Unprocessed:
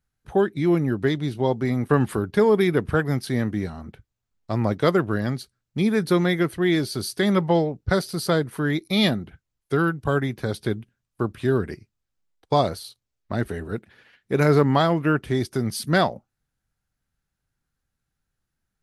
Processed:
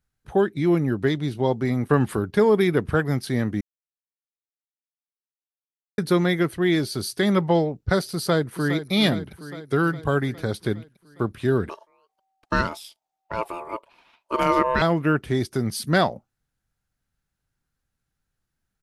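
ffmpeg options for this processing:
-filter_complex "[0:a]asplit=2[s0][s1];[s1]afade=t=in:st=8.15:d=0.01,afade=t=out:st=8.91:d=0.01,aecho=0:1:410|820|1230|1640|2050|2460|2870|3280:0.281838|0.183195|0.119077|0.0773998|0.0503099|0.0327014|0.0212559|0.0138164[s2];[s0][s2]amix=inputs=2:normalize=0,asettb=1/sr,asplit=3[s3][s4][s5];[s3]atrim=end=11.694[s6];[s4]atrim=start=11.69:end=14.82,asetpts=PTS-STARTPTS,afade=t=in:d=0.004:c=qsin,afade=t=out:st=3.126:d=0.004:c=qsin,aeval=exprs='val(0)*sin(2*PI*770*n/s)':c=same[s7];[s5]atrim=start=14.816[s8];[s6][s7]acrossfade=d=0.004:c1=hsin:c2=qsin[s9];[s9][s8]acrossfade=d=0.004:c1=qsin:c2=hsin,asplit=3[s10][s11][s12];[s10]atrim=end=3.61,asetpts=PTS-STARTPTS,afade=t=out:st=3.606:d=0.004:c=hsin[s13];[s11]atrim=start=3.61:end=5.98,asetpts=PTS-STARTPTS,volume=0[s14];[s12]atrim=start=5.98,asetpts=PTS-STARTPTS,afade=t=in:d=0.004:c=hsin[s15];[s13][s14][s15]concat=n=3:v=0:a=1"

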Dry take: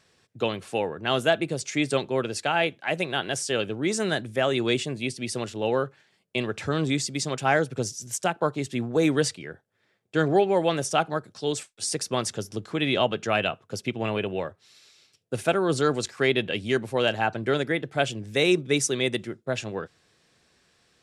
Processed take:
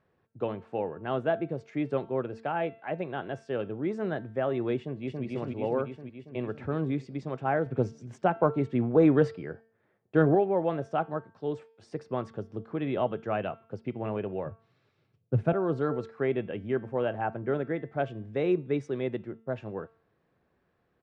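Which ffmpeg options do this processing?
-filter_complex "[0:a]asplit=2[s0][s1];[s1]afade=t=in:st=4.79:d=0.01,afade=t=out:st=5.25:d=0.01,aecho=0:1:280|560|840|1120|1400|1680|1960|2240|2520|2800|3080|3360:0.891251|0.623876|0.436713|0.305699|0.213989|0.149793|0.104855|0.0733983|0.0513788|0.0359652|0.0251756|0.0176229[s2];[s0][s2]amix=inputs=2:normalize=0,asettb=1/sr,asplit=3[s3][s4][s5];[s3]atrim=end=7.664[s6];[s4]atrim=start=7.66:end=10.35,asetpts=PTS-STARTPTS,afade=t=in:d=0.004:c=qsin,afade=t=out:st=2.686:d=0.004:c=qsin,acontrast=54[s7];[s5]atrim=start=10.346[s8];[s6][s7]acrossfade=d=0.004:c1=hsin:c2=qsin[s9];[s9][s8]acrossfade=d=0.004:c1=qsin:c2=hsin,asettb=1/sr,asplit=3[s10][s11][s12];[s10]atrim=end=14.464[s13];[s11]atrim=start=14.46:end=15.53,asetpts=PTS-STARTPTS,afade=t=in:d=0.004:c=qsin,afade=t=out:st=1.066:d=0.004:c=qsin,equalizer=f=120:w=0.92:g=14[s14];[s12]atrim=start=15.526[s15];[s13][s14]acrossfade=d=0.004:c1=hsin:c2=qsin[s16];[s16][s15]acrossfade=d=0.004:c1=qsin:c2=hsin,asettb=1/sr,asplit=3[s17][s18][s19];[s17]atrim=end=16.184[s20];[s18]atrim=start=16.18:end=17.64,asetpts=PTS-STARTPTS,afade=t=in:d=0.004:c=qsin,afade=t=out:st=1.456:d=0.004:c=qsin,equalizer=f=4100:t=o:w=0.28:g=-9.5[s21];[s19]atrim=start=17.636[s22];[s20][s21]acrossfade=d=0.004:c1=hsin:c2=qsin[s23];[s23][s22]acrossfade=d=0.004:c1=qsin:c2=hsin,lowpass=1200,bandreject=f=225.1:t=h:w=4,bandreject=f=450.2:t=h:w=4,bandreject=f=675.3:t=h:w=4,bandreject=f=900.4:t=h:w=4,bandreject=f=1125.5:t=h:w=4,bandreject=f=1350.6:t=h:w=4,bandreject=f=1575.7:t=h:w=4,bandreject=f=1800.8:t=h:w=4,bandreject=f=2025.9:t=h:w=4,bandreject=f=2251:t=h:w=4,bandreject=f=2476.1:t=h:w=4,bandreject=f=2701.2:t=h:w=4,bandreject=f=2926.3:t=h:w=4,bandreject=f=3151.4:t=h:w=4,bandreject=f=3376.5:t=h:w=4,bandreject=f=3601.6:t=h:w=4,bandreject=f=3826.7:t=h:w=4,bandreject=f=4051.8:t=h:w=4,bandreject=f=4276.9:t=h:w=4,bandreject=f=4502:t=h:w=4,bandreject=f=4727.1:t=h:w=4,bandreject=f=4952.2:t=h:w=4,bandreject=f=5177.3:t=h:w=4,bandreject=f=5402.4:t=h:w=4,volume=0.631"

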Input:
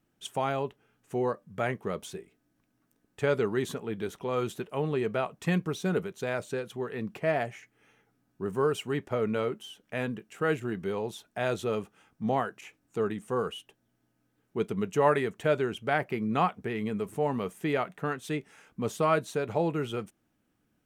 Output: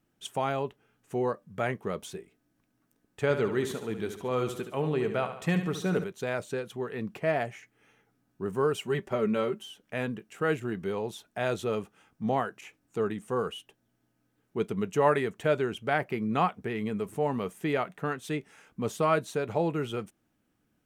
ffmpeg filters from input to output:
-filter_complex "[0:a]asettb=1/sr,asplit=3[s0][s1][s2];[s0]atrim=end=3.234[s3];[s1]atrim=start=3.23:end=6.04,asetpts=PTS-STARTPTS,afade=t=in:d=0.004:c=qsin,afade=t=out:st=2.806:d=0.004:c=qsin,aecho=1:1:71|142|213|284|355:0.335|0.164|0.0804|0.0394|0.0193,atrim=end_sample=123921[s4];[s2]atrim=start=6.036[s5];[s3][s4]acrossfade=d=0.004:c1=hsin:c2=qsin[s6];[s6][s5]acrossfade=d=0.004:c1=qsin:c2=hsin,asettb=1/sr,asplit=3[s7][s8][s9];[s7]atrim=end=8.824[s10];[s8]atrim=start=8.82:end=9.64,asetpts=PTS-STARTPTS,afade=t=in:d=0.004:c=qsin,afade=t=out:st=0.816:d=0.004:c=qsin,aecho=1:1:5.2:0.65,atrim=end_sample=36162[s11];[s9]atrim=start=9.636[s12];[s10][s11]acrossfade=d=0.004:c1=hsin:c2=qsin[s13];[s13][s12]acrossfade=d=0.004:c1=qsin:c2=hsin"

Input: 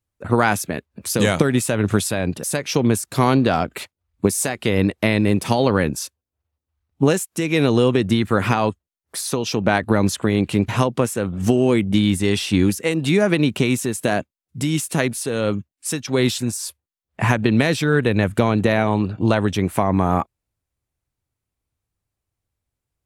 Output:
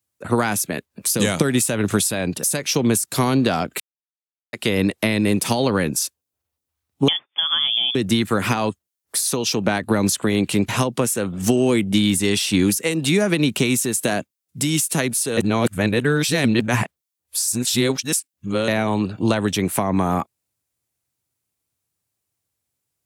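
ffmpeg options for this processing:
-filter_complex "[0:a]asettb=1/sr,asplit=3[s0][s1][s2];[s0]atrim=end=7.084[s3];[s1]atrim=start=7.08:end=7.95,asetpts=PTS-STARTPTS,afade=t=in:d=0.004:c=qsin,afade=t=out:st=0.866:d=0.004:c=qsin,lowpass=f=3100:t=q:w=0.5098,lowpass=f=3100:t=q:w=0.6013,lowpass=f=3100:t=q:w=0.9,lowpass=f=3100:t=q:w=2.563,afreqshift=-3600[s4];[s2]atrim=start=7.946[s5];[s3][s4]acrossfade=d=0.004:c1=hsin:c2=qsin[s6];[s6][s5]acrossfade=d=0.004:c1=qsin:c2=hsin,asplit=5[s7][s8][s9][s10][s11];[s7]atrim=end=3.8,asetpts=PTS-STARTPTS,afade=t=out:st=3.796:d=0.004:c=hsin[s12];[s8]atrim=start=3.8:end=4.53,asetpts=PTS-STARTPTS,volume=0[s13];[s9]atrim=start=4.53:end=15.372,asetpts=PTS-STARTPTS,afade=t=in:d=0.004:c=hsin[s14];[s10]atrim=start=15.368:end=18.682,asetpts=PTS-STARTPTS,areverse[s15];[s11]atrim=start=18.678[s16];[s12][s13][s14]concat=n=3:v=0:a=1[s17];[s17][s15]acrossfade=d=0.004:c1=hsin:c2=hsin[s18];[s18][s16]acrossfade=d=0.004:c1=hsin:c2=hsin,highpass=120,highshelf=f=3800:g=11,acrossover=split=330[s19][s20];[s20]acompressor=threshold=0.126:ratio=6[s21];[s19][s21]amix=inputs=2:normalize=0"

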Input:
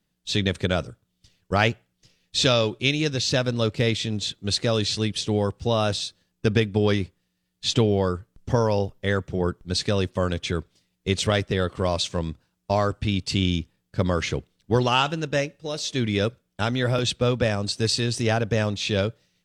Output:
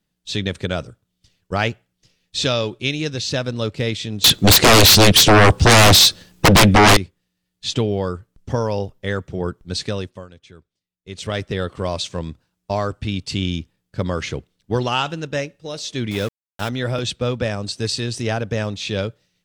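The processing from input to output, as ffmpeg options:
-filter_complex "[0:a]asettb=1/sr,asplit=3[s0][s1][s2];[s0]atrim=end=4.244[s3];[s1]atrim=start=4.24:end=6.97,asetpts=PTS-STARTPTS,afade=t=in:d=0.004:c=qsin,afade=t=out:st=2.726:d=0.004:c=qsin,aeval=exprs='0.473*sin(PI/2*8.91*val(0)/0.473)':c=same[s4];[s2]atrim=start=6.966[s5];[s3][s4]acrossfade=d=0.004:c1=hsin:c2=qsin[s6];[s6][s5]acrossfade=d=0.004:c1=qsin:c2=hsin,asettb=1/sr,asplit=3[s7][s8][s9];[s7]atrim=end=16.114[s10];[s8]atrim=start=16.11:end=16.69,asetpts=PTS-STARTPTS,afade=t=in:d=0.004:c=qsin,afade=t=out:st=0.576:d=0.004:c=qsin,aeval=exprs='val(0)*gte(abs(val(0)),0.0355)':c=same[s11];[s9]atrim=start=16.686[s12];[s10][s11]acrossfade=d=0.004:c1=hsin:c2=qsin[s13];[s13][s12]acrossfade=d=0.004:c1=qsin:c2=hsin,asplit=3[s14][s15][s16];[s14]atrim=end=10.27,asetpts=PTS-STARTPTS,afade=t=out:st=9.85:d=0.42:silence=0.11885[s17];[s15]atrim=start=10.27:end=11.04,asetpts=PTS-STARTPTS,volume=0.119[s18];[s16]atrim=start=11.04,asetpts=PTS-STARTPTS,afade=t=in:d=0.42:silence=0.11885[s19];[s17][s18][s19]concat=n=3:v=0:a=1"

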